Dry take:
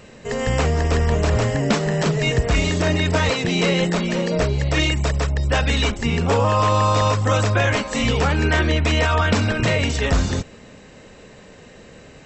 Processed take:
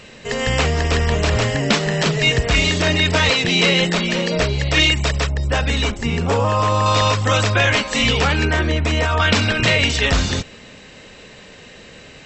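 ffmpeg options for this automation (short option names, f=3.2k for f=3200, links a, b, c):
-af "asetnsamples=n=441:p=0,asendcmd='5.28 equalizer g 0.5;6.86 equalizer g 8.5;8.45 equalizer g -0.5;9.2 equalizer g 9.5',equalizer=f=3.3k:t=o:w=2:g=9"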